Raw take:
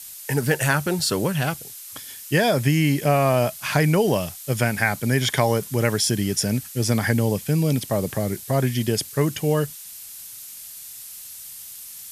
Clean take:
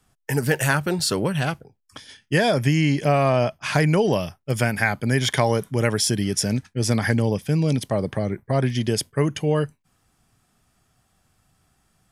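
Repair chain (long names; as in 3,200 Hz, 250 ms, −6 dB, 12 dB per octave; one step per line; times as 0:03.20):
noise reduction from a noise print 27 dB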